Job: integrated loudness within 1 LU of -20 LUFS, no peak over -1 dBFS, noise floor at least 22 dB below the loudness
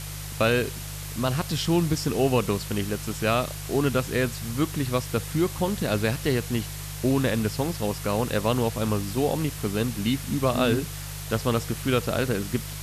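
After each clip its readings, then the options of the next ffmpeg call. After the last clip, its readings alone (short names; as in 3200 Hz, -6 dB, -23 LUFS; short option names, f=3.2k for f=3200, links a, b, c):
hum 50 Hz; harmonics up to 150 Hz; hum level -36 dBFS; noise floor -35 dBFS; noise floor target -48 dBFS; loudness -26.0 LUFS; peak -8.5 dBFS; loudness target -20.0 LUFS
-> -af "bandreject=f=50:t=h:w=4,bandreject=f=100:t=h:w=4,bandreject=f=150:t=h:w=4"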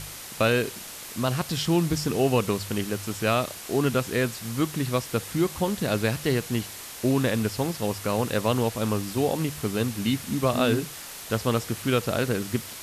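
hum none; noise floor -40 dBFS; noise floor target -49 dBFS
-> -af "afftdn=nr=9:nf=-40"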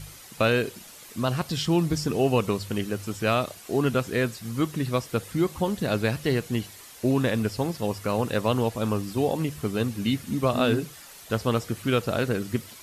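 noise floor -46 dBFS; noise floor target -49 dBFS
-> -af "afftdn=nr=6:nf=-46"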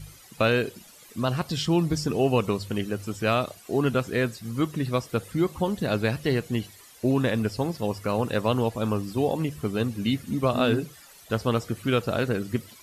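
noise floor -51 dBFS; loudness -26.5 LUFS; peak -9.5 dBFS; loudness target -20.0 LUFS
-> -af "volume=6.5dB"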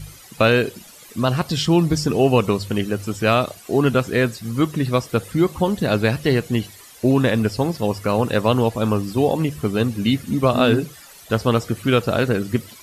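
loudness -20.0 LUFS; peak -3.0 dBFS; noise floor -44 dBFS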